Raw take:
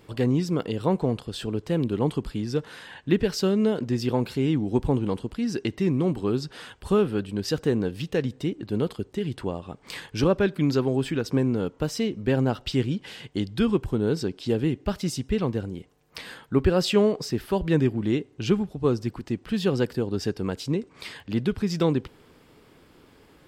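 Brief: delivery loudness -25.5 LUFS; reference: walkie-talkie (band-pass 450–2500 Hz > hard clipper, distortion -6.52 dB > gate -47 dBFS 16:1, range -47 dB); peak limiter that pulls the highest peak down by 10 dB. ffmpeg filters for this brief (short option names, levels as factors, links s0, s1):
-af "alimiter=limit=0.112:level=0:latency=1,highpass=450,lowpass=2500,asoftclip=type=hard:threshold=0.0158,agate=range=0.00447:threshold=0.00447:ratio=16,volume=6.31"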